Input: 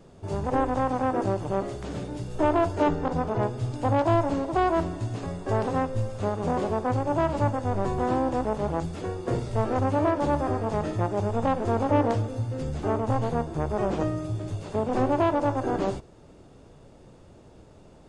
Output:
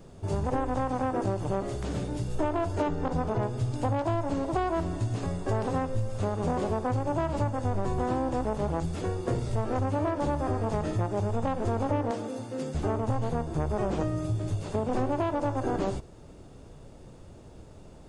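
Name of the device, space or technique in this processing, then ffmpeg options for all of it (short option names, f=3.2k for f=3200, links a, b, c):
ASMR close-microphone chain: -filter_complex "[0:a]asettb=1/sr,asplit=3[a][b][c];[a]atrim=end=12.114[d];[b]atrim=start=12.11:end=12.75,asetpts=PTS-STARTPTS,afade=t=in:d=0.004:c=qsin,afade=t=out:st=0.636:d=0.004:c=qsin,highpass=f=190:w=0.5412,highpass=f=190:w=1.3066[e];[c]atrim=start=12.746[f];[d][e]acrossfade=d=0.004:c1=hsin:c2=qsin[g];[g][f]acrossfade=d=0.004:c1=qsin:c2=hsin,lowshelf=f=110:g=6.5,acompressor=threshold=-24dB:ratio=6,highshelf=f=7.9k:g=7"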